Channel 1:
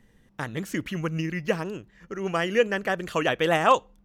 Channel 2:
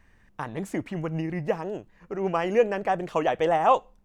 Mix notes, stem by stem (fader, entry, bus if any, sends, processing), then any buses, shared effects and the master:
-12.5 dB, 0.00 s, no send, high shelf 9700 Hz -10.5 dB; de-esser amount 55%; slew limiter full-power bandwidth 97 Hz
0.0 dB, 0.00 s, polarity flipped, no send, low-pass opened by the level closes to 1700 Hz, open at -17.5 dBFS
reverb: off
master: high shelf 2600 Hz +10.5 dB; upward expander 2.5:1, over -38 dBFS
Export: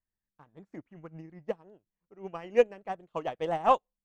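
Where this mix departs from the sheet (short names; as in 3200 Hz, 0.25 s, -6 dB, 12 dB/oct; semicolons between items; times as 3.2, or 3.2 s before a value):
stem 2: polarity flipped; master: missing high shelf 2600 Hz +10.5 dB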